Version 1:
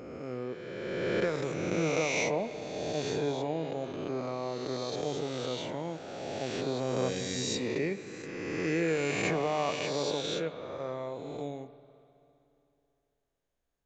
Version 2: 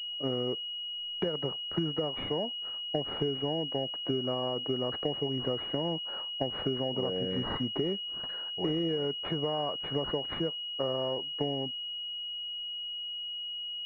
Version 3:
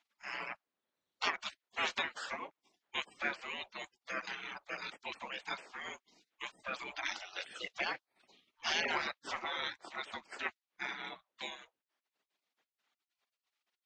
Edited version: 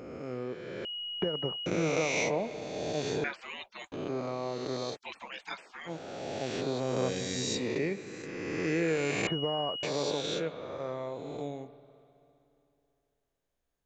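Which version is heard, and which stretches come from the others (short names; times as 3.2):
1
0.85–1.66 from 2
3.24–3.92 from 3
4.94–5.88 from 3, crossfade 0.06 s
9.27–9.83 from 2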